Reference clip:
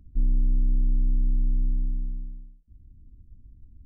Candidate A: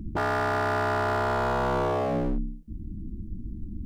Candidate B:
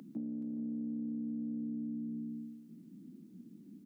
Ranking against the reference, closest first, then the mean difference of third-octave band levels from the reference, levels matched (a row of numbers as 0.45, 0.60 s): B, A; 5.0, 14.0 dB